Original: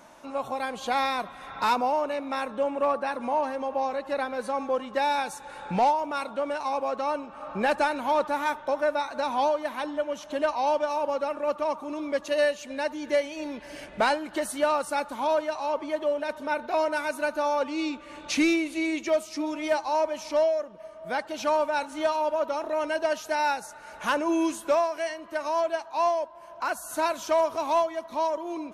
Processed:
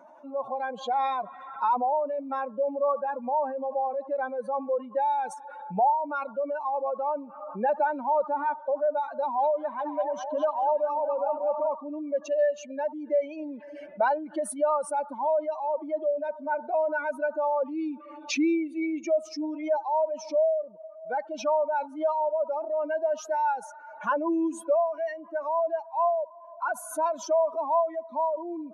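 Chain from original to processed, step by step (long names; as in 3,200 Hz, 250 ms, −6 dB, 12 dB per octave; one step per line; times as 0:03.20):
expanding power law on the bin magnitudes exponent 2.2
high-pass filter 240 Hz 12 dB per octave
0:09.16–0:11.75: echo through a band-pass that steps 208 ms, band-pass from 2,700 Hz, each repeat −0.7 octaves, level −1.5 dB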